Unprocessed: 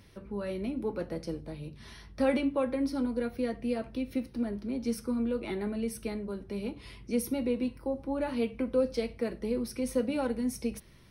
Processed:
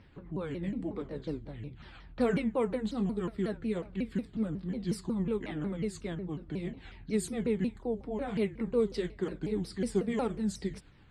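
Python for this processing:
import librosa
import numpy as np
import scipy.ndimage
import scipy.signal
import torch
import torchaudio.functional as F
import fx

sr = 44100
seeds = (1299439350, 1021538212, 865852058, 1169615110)

y = fx.pitch_ramps(x, sr, semitones=-6.0, every_ms=182)
y = fx.env_lowpass(y, sr, base_hz=2800.0, full_db=-25.5)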